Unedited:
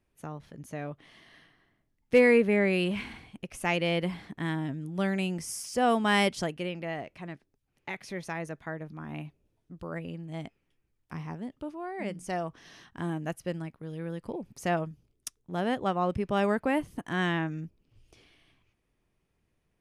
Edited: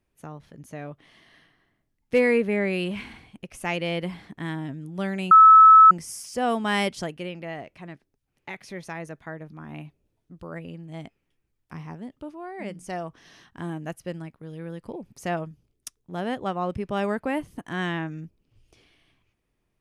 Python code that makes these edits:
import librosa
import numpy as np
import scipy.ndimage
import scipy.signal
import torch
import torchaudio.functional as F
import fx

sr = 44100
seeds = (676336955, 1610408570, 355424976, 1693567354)

y = fx.edit(x, sr, fx.insert_tone(at_s=5.31, length_s=0.6, hz=1300.0, db=-7.5), tone=tone)